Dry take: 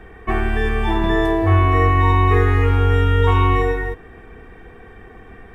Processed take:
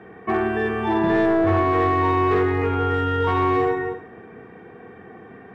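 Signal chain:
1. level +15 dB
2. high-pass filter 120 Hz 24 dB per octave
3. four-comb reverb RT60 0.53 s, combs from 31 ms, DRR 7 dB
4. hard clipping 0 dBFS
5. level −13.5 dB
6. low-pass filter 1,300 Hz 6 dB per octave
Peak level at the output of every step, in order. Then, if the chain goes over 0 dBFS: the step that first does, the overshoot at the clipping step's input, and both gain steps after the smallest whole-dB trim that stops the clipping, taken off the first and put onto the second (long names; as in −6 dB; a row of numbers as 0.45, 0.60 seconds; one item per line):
+10.5, +7.5, +8.0, 0.0, −13.5, −13.5 dBFS
step 1, 8.0 dB
step 1 +7 dB, step 5 −5.5 dB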